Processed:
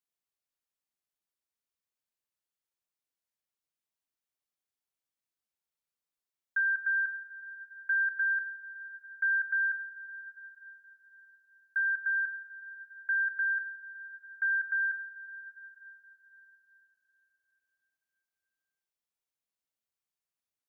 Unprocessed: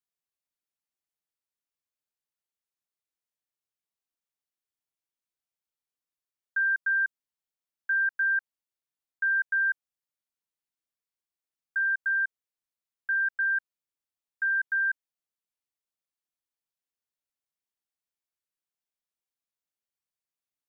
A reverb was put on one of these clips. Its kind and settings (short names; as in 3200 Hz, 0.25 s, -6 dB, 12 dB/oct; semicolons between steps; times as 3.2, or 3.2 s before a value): plate-style reverb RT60 4.5 s, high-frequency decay 0.85×, DRR 12 dB; gain -1.5 dB